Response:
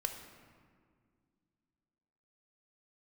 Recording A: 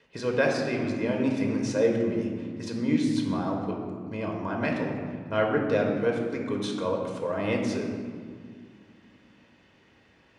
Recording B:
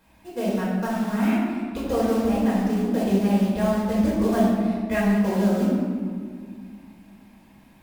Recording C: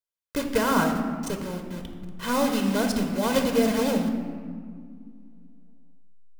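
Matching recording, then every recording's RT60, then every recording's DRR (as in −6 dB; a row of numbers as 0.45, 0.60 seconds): C; 2.0, 2.0, 2.0 seconds; 0.5, −7.5, 4.5 decibels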